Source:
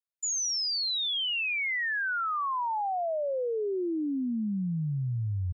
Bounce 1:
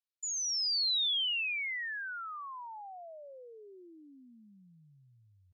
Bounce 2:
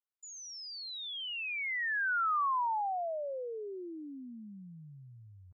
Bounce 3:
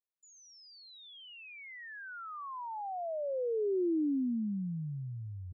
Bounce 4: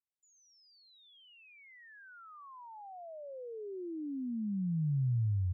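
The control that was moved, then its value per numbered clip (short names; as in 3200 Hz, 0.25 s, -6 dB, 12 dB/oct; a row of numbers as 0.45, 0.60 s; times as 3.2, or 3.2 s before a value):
band-pass, frequency: 3900, 1200, 330, 120 Hz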